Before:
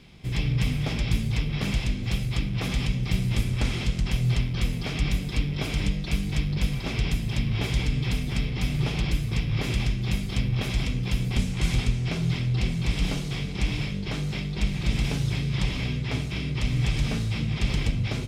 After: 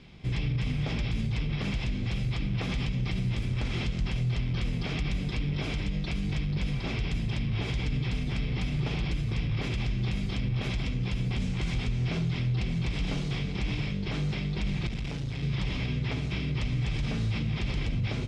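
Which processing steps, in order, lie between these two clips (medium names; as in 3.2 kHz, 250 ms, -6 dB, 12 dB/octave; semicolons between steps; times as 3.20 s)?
peak limiter -21.5 dBFS, peak gain reduction 10.5 dB; 14.87–15.43 s: valve stage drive 27 dB, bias 0.55; distance through air 83 m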